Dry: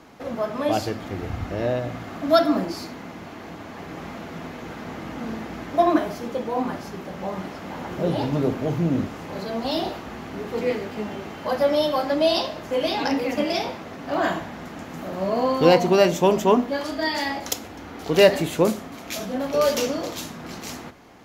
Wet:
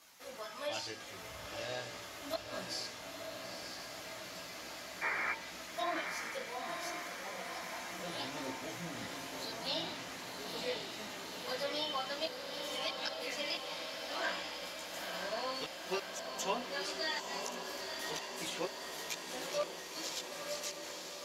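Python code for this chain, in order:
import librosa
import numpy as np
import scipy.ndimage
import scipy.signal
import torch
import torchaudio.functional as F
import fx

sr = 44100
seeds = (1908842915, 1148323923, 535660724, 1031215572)

p1 = fx.spec_paint(x, sr, seeds[0], shape='noise', start_s=5.01, length_s=0.32, low_hz=290.0, high_hz=2400.0, level_db=-24.0)
p2 = F.preemphasis(torch.from_numpy(p1), 0.97).numpy()
p3 = 10.0 ** (-22.5 / 20.0) * np.tanh(p2 / 10.0 ** (-22.5 / 20.0))
p4 = p2 + (p3 * librosa.db_to_amplitude(-7.5))
p5 = fx.comb_fb(p4, sr, f0_hz=180.0, decay_s=0.58, harmonics='odd', damping=0.0, mix_pct=70)
p6 = fx.gate_flip(p5, sr, shuts_db=-30.0, range_db=-26)
p7 = fx.chorus_voices(p6, sr, voices=4, hz=0.37, base_ms=17, depth_ms=1.7, mix_pct=50)
p8 = fx.env_lowpass_down(p7, sr, base_hz=2900.0, full_db=-42.5)
p9 = p8 + fx.echo_diffused(p8, sr, ms=942, feedback_pct=69, wet_db=-5.0, dry=0)
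y = p9 * librosa.db_to_amplitude(12.0)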